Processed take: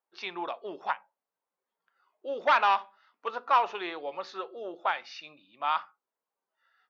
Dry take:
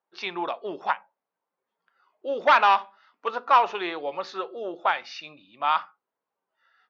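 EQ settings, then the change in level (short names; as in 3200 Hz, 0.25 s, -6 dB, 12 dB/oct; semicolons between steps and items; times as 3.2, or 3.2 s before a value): low shelf 130 Hz -9 dB; -5.0 dB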